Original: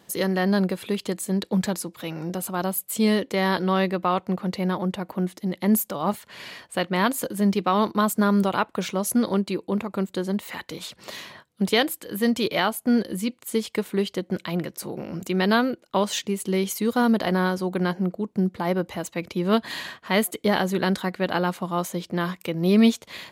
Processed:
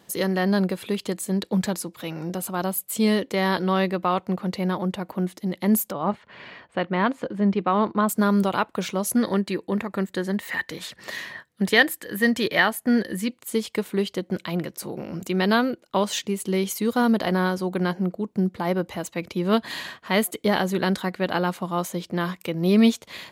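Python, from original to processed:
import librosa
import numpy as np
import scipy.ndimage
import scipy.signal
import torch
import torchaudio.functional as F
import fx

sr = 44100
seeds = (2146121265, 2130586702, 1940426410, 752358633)

y = fx.lowpass(x, sr, hz=2400.0, slope=12, at=(5.92, 8.09))
y = fx.peak_eq(y, sr, hz=1800.0, db=13.5, octaves=0.26, at=(9.17, 13.28))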